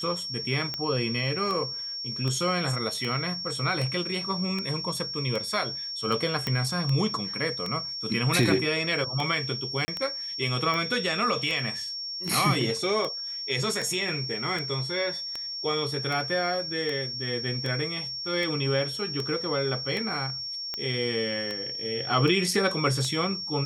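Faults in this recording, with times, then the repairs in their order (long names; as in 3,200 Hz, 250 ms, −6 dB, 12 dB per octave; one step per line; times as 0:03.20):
scratch tick 78 rpm −17 dBFS
whistle 5,500 Hz −32 dBFS
0:06.47: click −13 dBFS
0:09.85–0:09.88: drop-out 30 ms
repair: click removal
notch filter 5,500 Hz, Q 30
repair the gap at 0:09.85, 30 ms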